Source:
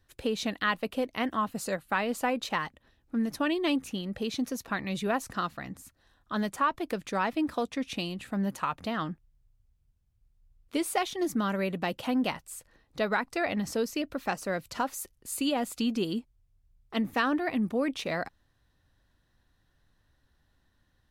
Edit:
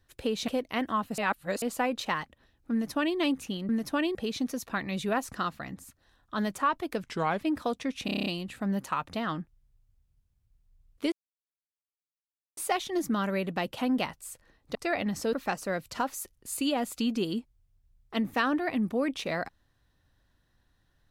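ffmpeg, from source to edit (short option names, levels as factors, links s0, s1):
-filter_complex "[0:a]asplit=18[s0][s1][s2][s3][s4][s5][s6][s7][s8][s9][s10][s11][s12][s13][s14][s15][s16][s17];[s0]atrim=end=0.482[s18];[s1]atrim=start=0.918:end=1.622[s19];[s2]atrim=start=1.618:end=2.062,asetpts=PTS-STARTPTS,areverse[s20];[s3]atrim=start=2.058:end=4.132[s21];[s4]atrim=start=3.158:end=3.622[s22];[s5]atrim=start=4.128:end=7.014[s23];[s6]atrim=start=7.01:end=7.33,asetpts=PTS-STARTPTS,asetrate=37044,aresample=44100[s24];[s7]atrim=start=7.326:end=8.002[s25];[s8]atrim=start=7.968:end=8.002[s26];[s9]atrim=start=7.968:end=8.002[s27];[s10]atrim=start=7.968:end=8.002[s28];[s11]atrim=start=7.968:end=8.002[s29];[s12]atrim=start=7.968:end=8.002[s30];[s13]atrim=start=7.968:end=8.002[s31];[s14]atrim=start=7.968:end=10.83,asetpts=PTS-STARTPTS,afade=t=out:st=2.858:d=0.004:c=hsin,apad=pad_dur=1.45[s32];[s15]atrim=start=10.83:end=13.012,asetpts=PTS-STARTPTS,afade=t=in:d=0.004:c=hsin[s33];[s16]atrim=start=13.258:end=13.842[s34];[s17]atrim=start=14.128[s35];[s18][s19]acrossfade=d=0.004:c1=hsin:c2=hsin[s36];[s36][s20]acrossfade=d=0.004:c1=hsin:c2=hsin[s37];[s37][s21]acrossfade=d=0.004:c1=hsin:c2=hsin[s38];[s38][s22]acrossfade=d=0.004:c1=hsin:c2=hsin[s39];[s39][s23]acrossfade=d=0.004:c1=hsin:c2=hsin[s40];[s40][s24]acrossfade=d=0.004:c1=hsin:c2=hsin[s41];[s41][s25]acrossfade=d=0.004:c1=hsin:c2=hsin[s42];[s42][s26]acrossfade=d=0.004:c1=hsin:c2=hsin[s43];[s43][s27]acrossfade=d=0.004:c1=hsin:c2=hsin[s44];[s44][s28]acrossfade=d=0.004:c1=hsin:c2=hsin[s45];[s45][s29]acrossfade=d=0.004:c1=hsin:c2=hsin[s46];[s46][s30]acrossfade=d=0.004:c1=hsin:c2=hsin[s47];[s47][s31]acrossfade=d=0.004:c1=hsin:c2=hsin[s48];[s32][s33]concat=n=2:v=0:a=1[s49];[s48][s49]acrossfade=d=0.004:c1=hsin:c2=hsin[s50];[s50][s34]acrossfade=d=0.004:c1=hsin:c2=hsin[s51];[s51][s35]acrossfade=d=0.004:c1=hsin:c2=hsin"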